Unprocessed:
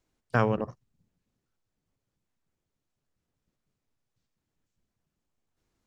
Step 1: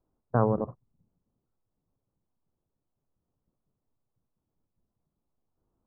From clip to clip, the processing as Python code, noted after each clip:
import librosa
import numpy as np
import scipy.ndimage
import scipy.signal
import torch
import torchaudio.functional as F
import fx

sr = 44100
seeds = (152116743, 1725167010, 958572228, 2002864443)

y = scipy.signal.sosfilt(scipy.signal.cheby2(4, 40, 2300.0, 'lowpass', fs=sr, output='sos'), x)
y = F.gain(torch.from_numpy(y), 1.0).numpy()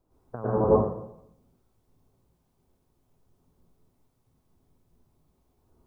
y = fx.over_compress(x, sr, threshold_db=-29.0, ratio=-0.5)
y = fx.rev_plate(y, sr, seeds[0], rt60_s=0.73, hf_ratio=0.85, predelay_ms=90, drr_db=-8.0)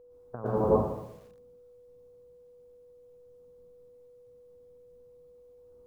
y = x + 10.0 ** (-50.0 / 20.0) * np.sin(2.0 * np.pi * 490.0 * np.arange(len(x)) / sr)
y = fx.echo_crushed(y, sr, ms=120, feedback_pct=35, bits=8, wet_db=-12)
y = F.gain(torch.from_numpy(y), -3.0).numpy()